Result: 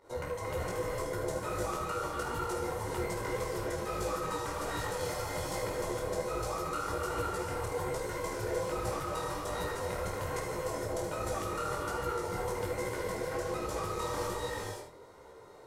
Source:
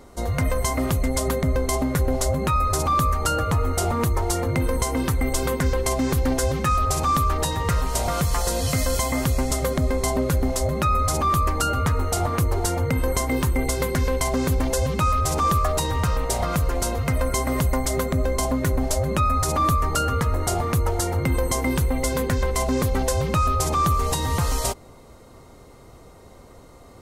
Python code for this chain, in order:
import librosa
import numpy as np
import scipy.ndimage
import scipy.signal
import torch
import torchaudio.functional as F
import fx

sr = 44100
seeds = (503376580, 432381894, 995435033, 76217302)

p1 = fx.highpass(x, sr, hz=490.0, slope=6)
p2 = fx.high_shelf(p1, sr, hz=2500.0, db=-10.5)
p3 = p2 + 0.56 * np.pad(p2, (int(2.1 * sr / 1000.0), 0))[:len(p2)]
p4 = fx.over_compress(p3, sr, threshold_db=-32.0, ratio=-1.0)
p5 = p3 + (p4 * 10.0 ** (0.0 / 20.0))
p6 = 10.0 ** (-16.5 / 20.0) * np.tanh(p5 / 10.0 ** (-16.5 / 20.0))
p7 = fx.volume_shaper(p6, sr, bpm=100, per_beat=1, depth_db=-11, release_ms=153.0, shape='fast start')
p8 = fx.stretch_grains(p7, sr, factor=0.58, grain_ms=25.0)
p9 = p8 + fx.room_early_taps(p8, sr, ms=(50, 77), db=(-8.0, -10.0), dry=0)
p10 = fx.rev_gated(p9, sr, seeds[0], gate_ms=490, shape='rising', drr_db=-1.0)
p11 = fx.detune_double(p10, sr, cents=43)
y = p11 * 10.0 ** (-8.0 / 20.0)